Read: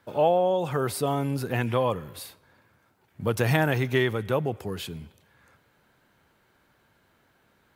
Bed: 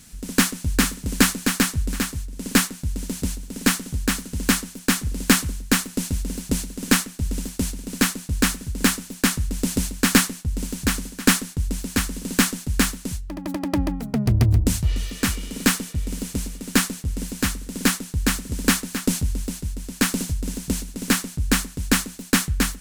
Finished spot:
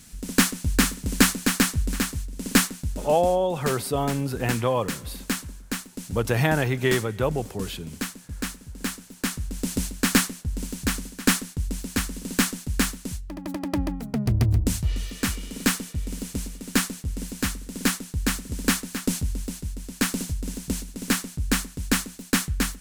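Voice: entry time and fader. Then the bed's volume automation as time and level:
2.90 s, +1.0 dB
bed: 2.76 s -1 dB
3.41 s -11 dB
8.84 s -11 dB
9.8 s -3.5 dB

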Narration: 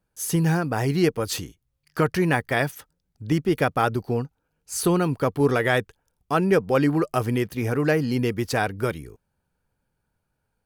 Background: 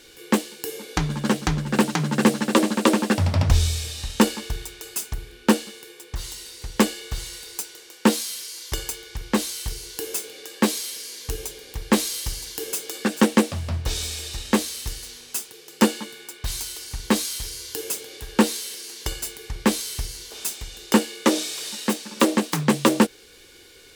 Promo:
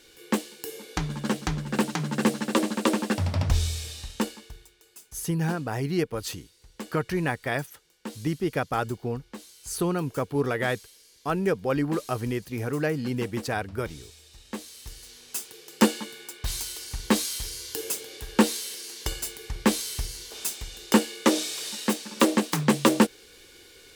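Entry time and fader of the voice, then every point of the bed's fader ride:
4.95 s, -5.5 dB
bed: 3.93 s -5.5 dB
4.77 s -20 dB
14.27 s -20 dB
15.51 s -2 dB

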